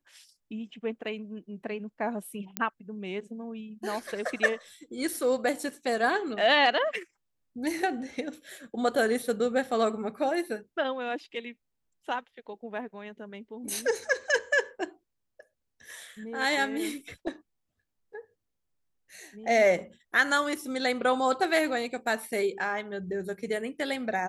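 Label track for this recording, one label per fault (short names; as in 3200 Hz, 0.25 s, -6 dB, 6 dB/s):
2.570000	2.570000	pop -11 dBFS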